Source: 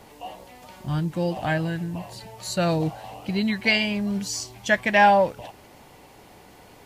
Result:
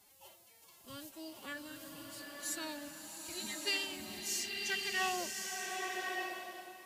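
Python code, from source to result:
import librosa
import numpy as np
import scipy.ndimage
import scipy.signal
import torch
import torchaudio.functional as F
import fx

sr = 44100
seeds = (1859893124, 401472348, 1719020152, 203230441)

y = scipy.signal.lfilter([1.0, -0.9], [1.0], x)
y = fx.pitch_keep_formants(y, sr, semitones=10.5)
y = fx.rev_bloom(y, sr, seeds[0], attack_ms=1130, drr_db=0.5)
y = F.gain(torch.from_numpy(y), -4.5).numpy()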